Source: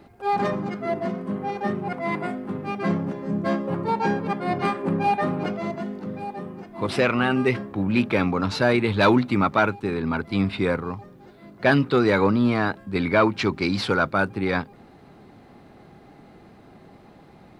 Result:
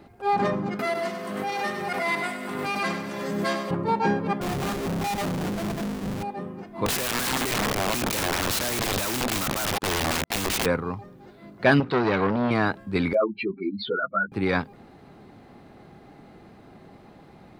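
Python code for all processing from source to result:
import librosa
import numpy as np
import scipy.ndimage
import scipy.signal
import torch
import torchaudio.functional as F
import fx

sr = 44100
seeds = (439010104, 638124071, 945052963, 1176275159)

y = fx.chain(x, sr, fx.tilt_eq(slope=4.5),
    fx.echo_feedback(ms=98, feedback_pct=52, wet_db=-8),
    fx.pre_swell(db_per_s=26.0), at=(0.79, 3.71))
y = fx.chain(y, sr, fx.halfwave_hold(),
    fx.low_shelf(hz=170.0, db=11.0),
    fx.tube_stage(drive_db=26.0, bias=0.6), at=(4.41, 6.23))
y = fx.chain(y, sr, fx.level_steps(step_db=21),
    fx.leveller(passes=5),
    fx.overflow_wrap(gain_db=19.0), at=(6.86, 10.66))
y = fx.chain(y, sr, fx.lowpass(hz=5200.0, slope=12),
    fx.transformer_sat(knee_hz=900.0), at=(11.8, 12.51))
y = fx.chain(y, sr, fx.spec_expand(power=3.3),
    fx.peak_eq(hz=97.0, db=-14.0, octaves=1.5),
    fx.ensemble(), at=(13.13, 14.32))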